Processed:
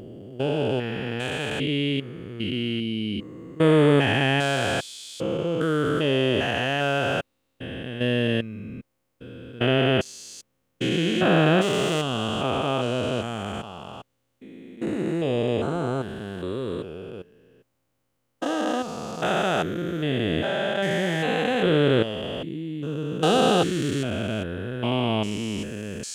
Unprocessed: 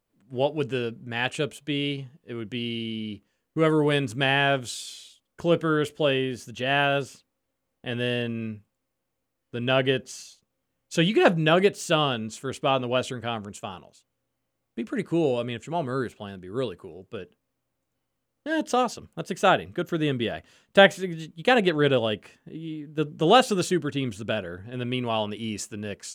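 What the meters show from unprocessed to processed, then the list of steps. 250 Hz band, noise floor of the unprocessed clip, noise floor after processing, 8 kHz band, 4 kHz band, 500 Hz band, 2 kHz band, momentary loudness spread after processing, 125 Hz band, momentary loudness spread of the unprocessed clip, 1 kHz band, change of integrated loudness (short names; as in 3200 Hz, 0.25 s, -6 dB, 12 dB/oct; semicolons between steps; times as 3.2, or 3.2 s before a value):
+3.0 dB, -80 dBFS, -74 dBFS, 0.0 dB, +1.0 dB, +1.0 dB, -0.5 dB, 16 LU, +4.0 dB, 18 LU, -1.0 dB, +1.0 dB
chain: stepped spectrum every 0.4 s; gain +6 dB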